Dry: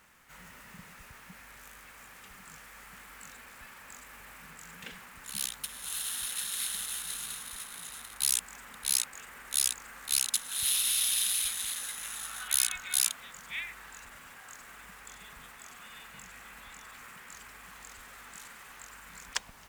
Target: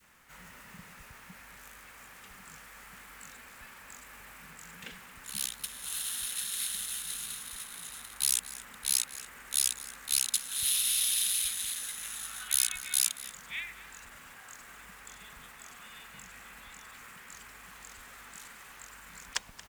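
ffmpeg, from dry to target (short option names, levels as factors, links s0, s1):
-filter_complex "[0:a]adynamicequalizer=threshold=0.00251:dfrequency=870:dqfactor=0.71:tfrequency=870:tqfactor=0.71:attack=5:release=100:ratio=0.375:range=3:mode=cutabove:tftype=bell,asplit=2[s0][s1];[s1]aecho=0:1:229:0.141[s2];[s0][s2]amix=inputs=2:normalize=0"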